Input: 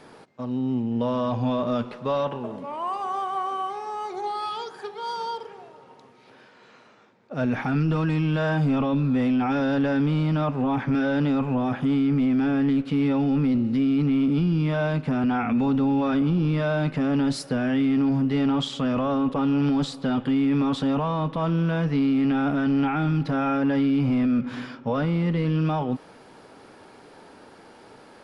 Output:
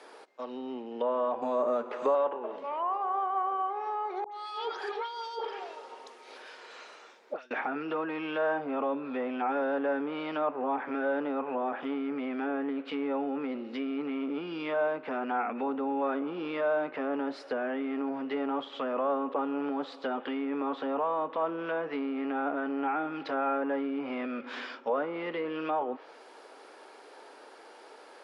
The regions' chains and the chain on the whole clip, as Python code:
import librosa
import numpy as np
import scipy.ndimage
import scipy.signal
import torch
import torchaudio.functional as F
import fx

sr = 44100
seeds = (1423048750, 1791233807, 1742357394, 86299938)

y = fx.chain(x, sr, fx.resample_bad(factor=6, down='none', up='hold'),
    fx.low_shelf(hz=350.0, db=3.0),
    fx.band_squash(depth_pct=100), at=(1.42, 2.15))
y = fx.chain(y, sr, fx.high_shelf(hz=4200.0, db=7.5),
    fx.over_compress(threshold_db=-34.0, ratio=-0.5),
    fx.dispersion(late='highs', ms=82.0, hz=1400.0), at=(4.24, 7.51))
y = scipy.signal.sosfilt(scipy.signal.butter(4, 370.0, 'highpass', fs=sr, output='sos'), y)
y = fx.env_lowpass_down(y, sr, base_hz=1300.0, full_db=-27.0)
y = fx.dynamic_eq(y, sr, hz=2700.0, q=0.71, threshold_db=-47.0, ratio=4.0, max_db=3)
y = y * librosa.db_to_amplitude(-1.5)